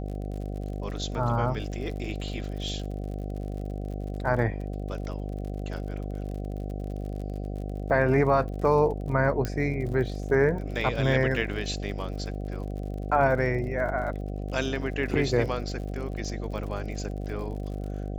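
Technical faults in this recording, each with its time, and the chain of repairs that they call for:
buzz 50 Hz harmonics 15 -33 dBFS
crackle 54/s -37 dBFS
9.45 pop -15 dBFS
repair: de-click; de-hum 50 Hz, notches 15

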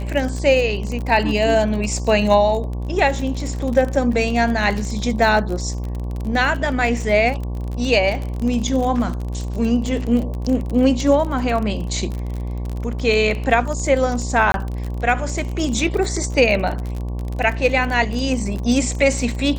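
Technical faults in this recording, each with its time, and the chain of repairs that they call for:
buzz 60 Hz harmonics 19 -25 dBFS
crackle 32/s -24 dBFS
14.52–14.54 gap 22 ms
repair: de-click; de-hum 60 Hz, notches 19; interpolate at 14.52, 22 ms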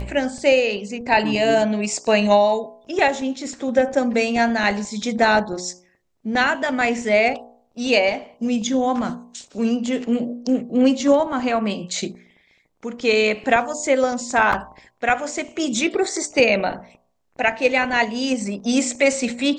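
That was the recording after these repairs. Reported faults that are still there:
none

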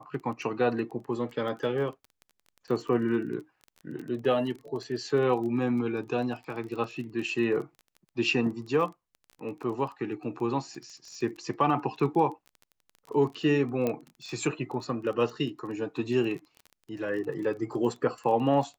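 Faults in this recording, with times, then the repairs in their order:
crackle 21/s -37 dBFS
13.87 pop -16 dBFS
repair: de-click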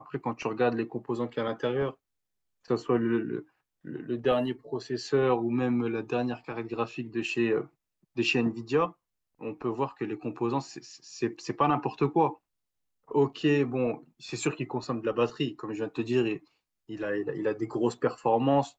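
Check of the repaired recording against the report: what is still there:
none

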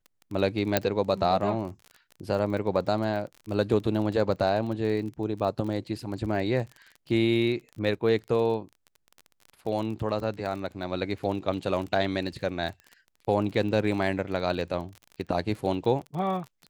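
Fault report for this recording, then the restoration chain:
crackle 32/s -35 dBFS
0.77 pop -6 dBFS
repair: de-click

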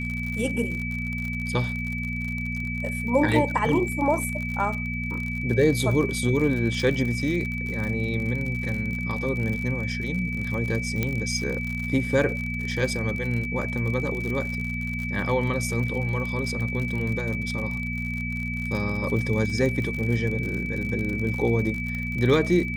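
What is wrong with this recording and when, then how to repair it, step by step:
crackle 59/s -30 dBFS
hum 60 Hz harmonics 4 -31 dBFS
tone 2300 Hz -31 dBFS
11.03 pop -11 dBFS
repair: de-click; de-hum 60 Hz, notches 4; notch 2300 Hz, Q 30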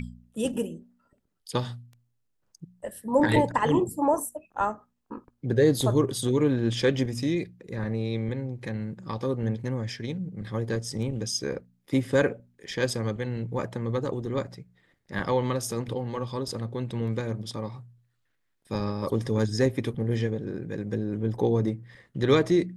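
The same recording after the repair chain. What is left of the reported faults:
11.03 pop

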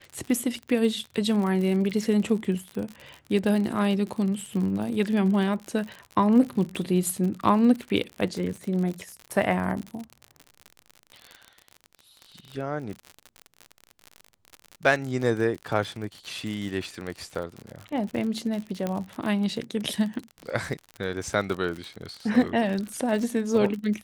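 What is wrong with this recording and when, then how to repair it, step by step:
crackle 56/s -31 dBFS
18.87 pop -15 dBFS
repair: de-click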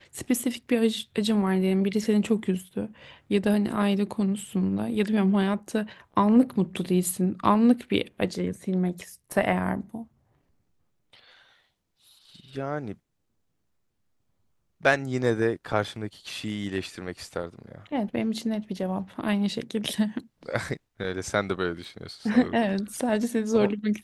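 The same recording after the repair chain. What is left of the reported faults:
none

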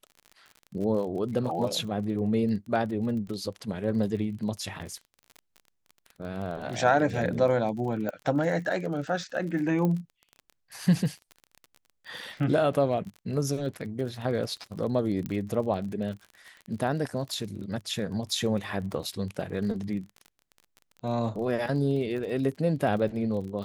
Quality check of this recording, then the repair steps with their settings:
crackle 32/s -36 dBFS
4.79–4.8 gap 7.1 ms
8.09 pop -20 dBFS
9.85 pop -17 dBFS
15.26 pop -20 dBFS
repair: de-click; interpolate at 4.79, 7.1 ms

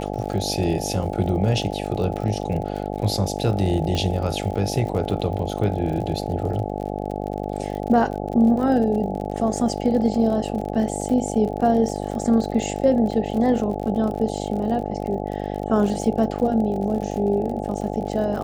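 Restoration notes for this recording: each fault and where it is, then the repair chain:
buzz 50 Hz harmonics 17 -28 dBFS
crackle 54/s -30 dBFS
3.95 pop -13 dBFS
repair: de-click; de-hum 50 Hz, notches 17

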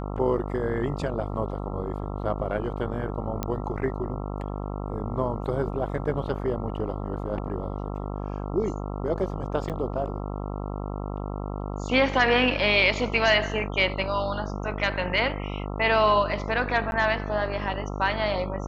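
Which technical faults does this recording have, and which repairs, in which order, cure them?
buzz 50 Hz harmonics 27 -32 dBFS
3.43 pop -13 dBFS
9.69–9.7 gap 7.8 ms
16.91–16.92 gap 11 ms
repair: de-click; de-hum 50 Hz, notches 27; interpolate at 9.69, 7.8 ms; interpolate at 16.91, 11 ms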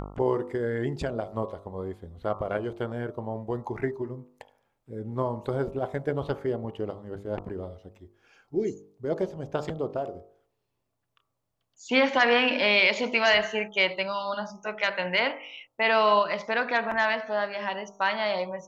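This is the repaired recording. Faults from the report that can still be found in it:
none

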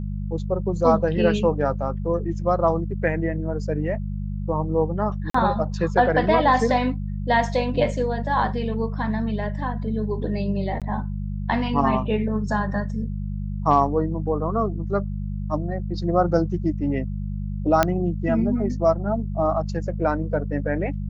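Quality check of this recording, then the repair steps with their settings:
hum 50 Hz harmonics 4 -28 dBFS
5.3–5.34 gap 44 ms
10.8–10.82 gap 17 ms
17.83 pop -4 dBFS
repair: de-click; de-hum 50 Hz, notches 4; interpolate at 5.3, 44 ms; interpolate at 10.8, 17 ms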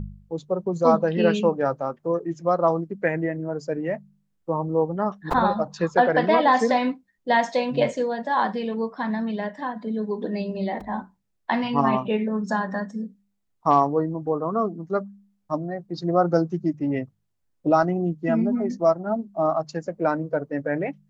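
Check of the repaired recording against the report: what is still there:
none

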